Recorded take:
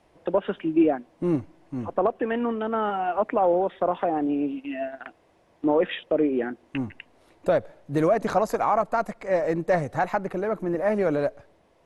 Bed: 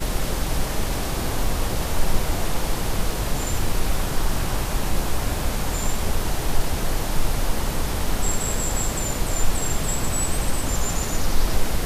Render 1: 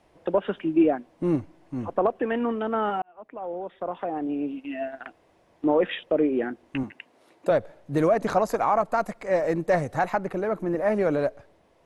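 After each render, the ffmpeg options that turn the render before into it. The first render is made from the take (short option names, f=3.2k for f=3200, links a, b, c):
-filter_complex "[0:a]asettb=1/sr,asplit=3[a][b][c];[a]atrim=end=6.834[d];[b]atrim=start=6.83:end=7.51,asetpts=PTS-STARTPTS,afade=t=in:d=0.004:c=qsin,afade=t=out:st=0.676:d=0.004:c=qsin,highpass=190[e];[c]atrim=start=7.506[f];[d][e]acrossfade=d=0.004:c1=hsin:c2=qsin[g];[g][f]acrossfade=d=0.004:c1=qsin:c2=hsin,asettb=1/sr,asplit=3[h][i][j];[h]atrim=end=8.894[k];[i]atrim=start=8.89:end=10.1,asetpts=PTS-STARTPTS,afade=t=in:d=0.004:c=qsin,afade=t=out:st=1.206:d=0.004:c=qsin,highshelf=f=5.7k:g=4[l];[j]atrim=start=10.096[m];[k][l]acrossfade=d=0.004:c1=hsin:c2=qsin[n];[n][m]acrossfade=d=0.004:c1=qsin:c2=hsin,asplit=2[o][p];[o]atrim=end=3.02,asetpts=PTS-STARTPTS,afade=t=out:st=3.016:d=0.004:c=hsin[q];[p]atrim=start=3.02,asetpts=PTS-STARTPTS,afade=t=in:d=1.94[r];[q][r]concat=n=2:v=0:a=1"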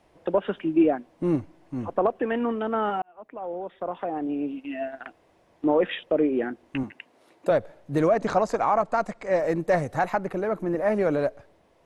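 -filter_complex "[0:a]asettb=1/sr,asplit=3[a][b][c];[a]atrim=end=7.994[d];[b]atrim=start=7.99:end=9.39,asetpts=PTS-STARTPTS,afade=t=in:d=0.004:c=qsin,afade=t=out:st=1.396:d=0.004:c=qsin,lowpass=f=8.5k:w=0.5412,lowpass=f=8.5k:w=1.3066[e];[c]atrim=start=9.386[f];[d][e]acrossfade=d=0.004:c1=hsin:c2=qsin[g];[g][f]acrossfade=d=0.004:c1=qsin:c2=hsin"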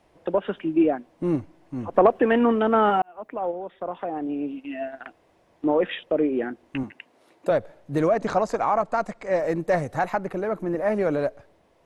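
-filter_complex "[0:a]asplit=3[a][b][c];[a]afade=t=out:st=1.93:d=0.02[d];[b]acontrast=76,afade=t=in:st=1.93:d=0.02,afade=t=out:st=3.5:d=0.02[e];[c]afade=t=in:st=3.5:d=0.02[f];[d][e][f]amix=inputs=3:normalize=0"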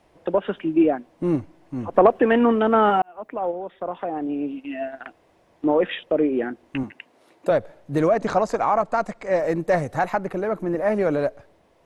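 -af "volume=2dB"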